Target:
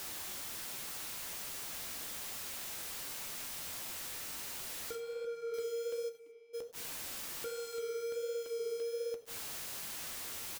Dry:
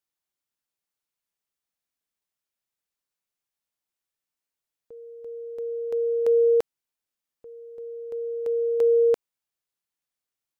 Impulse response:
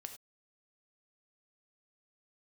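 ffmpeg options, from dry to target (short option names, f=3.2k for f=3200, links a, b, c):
-filter_complex "[0:a]aeval=exprs='val(0)+0.5*0.0188*sgn(val(0))':c=same,equalizer=f=730:w=1.2:g=-5.5,alimiter=level_in=2.5dB:limit=-24dB:level=0:latency=1:release=494,volume=-2.5dB,acompressor=threshold=-40dB:ratio=4,acrusher=bits=7:mix=0:aa=0.000001,asettb=1/sr,asplit=3[a][b][c];[a]atrim=end=4.954[d];[b]atrim=start=4.95:end=5.54,asetpts=PTS-STARTPTS,afade=t=in:d=0.004:c=qsin,afade=t=out:st=0.586:d=0.004:c=qsin,asplit=2[e][f];[f]highpass=f=720:p=1,volume=15dB,asoftclip=type=tanh:threshold=-36dB[g];[e][g]amix=inputs=2:normalize=0,lowpass=f=1.2k:p=1,volume=-6dB[h];[c]atrim=start=5.536[i];[d][h]acrossfade=d=0.004:c1=hsin:c2=qsin[j];[j][i]acrossfade=d=0.004:c1=qsin:c2=hsin,asplit=3[k][l][m];[k]afade=t=out:st=6.08:d=0.02[n];[l]asplit=3[o][p][q];[o]bandpass=f=300:t=q:w=8,volume=0dB[r];[p]bandpass=f=870:t=q:w=8,volume=-6dB[s];[q]bandpass=f=2.24k:t=q:w=8,volume=-9dB[t];[r][s][t]amix=inputs=3:normalize=0,afade=t=in:st=6.08:d=0.02,afade=t=out:st=6.53:d=0.02[u];[m]afade=t=in:st=6.53:d=0.02[v];[n][u][v]amix=inputs=3:normalize=0,asplit=2[w][x];[x]adelay=227.4,volume=-19dB,highshelf=f=4k:g=-5.12[y];[w][y]amix=inputs=2:normalize=0,asplit=2[z][aa];[1:a]atrim=start_sample=2205[ab];[aa][ab]afir=irnorm=-1:irlink=0,volume=9dB[ac];[z][ac]amix=inputs=2:normalize=0,flanger=delay=7.4:depth=9.4:regen=-44:speed=1.3:shape=sinusoidal,volume=-3.5dB"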